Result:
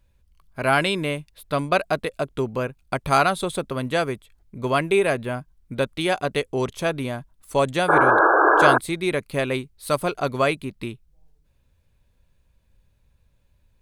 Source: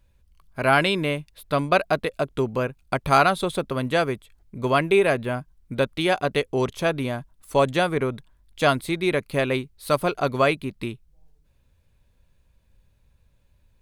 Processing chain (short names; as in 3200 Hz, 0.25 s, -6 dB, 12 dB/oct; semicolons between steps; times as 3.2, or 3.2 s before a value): dynamic EQ 8400 Hz, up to +6 dB, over -50 dBFS, Q 1.5; painted sound noise, 7.88–8.78, 300–1700 Hz -15 dBFS; gain -1 dB